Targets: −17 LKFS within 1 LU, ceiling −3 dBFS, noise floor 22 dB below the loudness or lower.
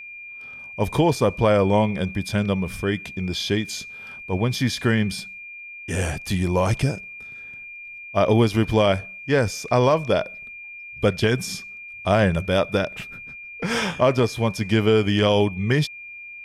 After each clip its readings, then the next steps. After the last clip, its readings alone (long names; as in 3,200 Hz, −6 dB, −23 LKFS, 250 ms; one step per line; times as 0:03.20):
interfering tone 2,400 Hz; level of the tone −36 dBFS; integrated loudness −22.0 LKFS; sample peak −7.0 dBFS; target loudness −17.0 LKFS
→ notch filter 2,400 Hz, Q 30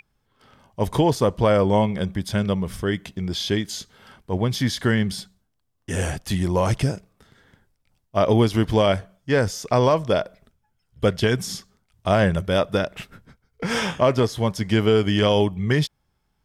interfering tone none found; integrated loudness −22.0 LKFS; sample peak −7.0 dBFS; target loudness −17.0 LKFS
→ level +5 dB
brickwall limiter −3 dBFS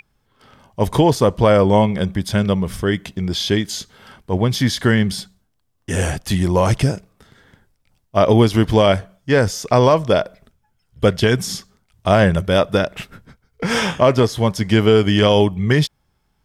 integrated loudness −17.0 LKFS; sample peak −3.0 dBFS; background noise floor −66 dBFS